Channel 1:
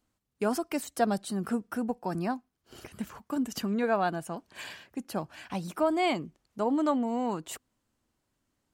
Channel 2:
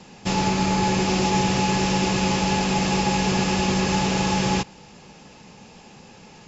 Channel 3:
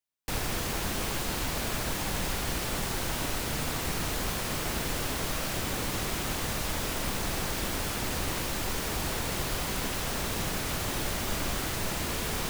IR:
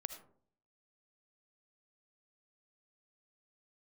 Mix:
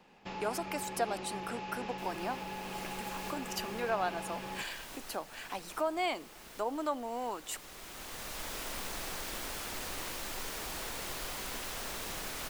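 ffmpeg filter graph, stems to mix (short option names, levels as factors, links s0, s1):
-filter_complex "[0:a]acompressor=threshold=0.0126:ratio=1.5,highpass=330,volume=1.12,asplit=3[s0][s1][s2];[s1]volume=0.168[s3];[1:a]lowpass=2900,acompressor=threshold=0.0708:ratio=6,volume=0.211,asplit=2[s4][s5];[s5]volume=0.376[s6];[2:a]adelay=1700,volume=0.473[s7];[s2]apad=whole_len=626198[s8];[s7][s8]sidechaincompress=threshold=0.00708:ratio=10:attack=6.3:release=1150[s9];[3:a]atrim=start_sample=2205[s10];[s3][s6]amix=inputs=2:normalize=0[s11];[s11][s10]afir=irnorm=-1:irlink=0[s12];[s0][s4][s9][s12]amix=inputs=4:normalize=0,equalizer=f=99:w=0.45:g=-11.5"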